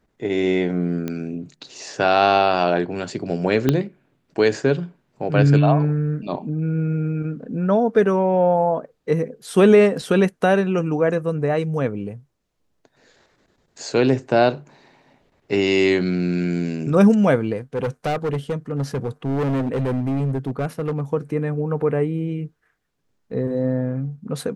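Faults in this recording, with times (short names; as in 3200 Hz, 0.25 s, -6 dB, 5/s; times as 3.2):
1.08 pop -14 dBFS
3.69 pop -5 dBFS
17.75–21.01 clipped -19 dBFS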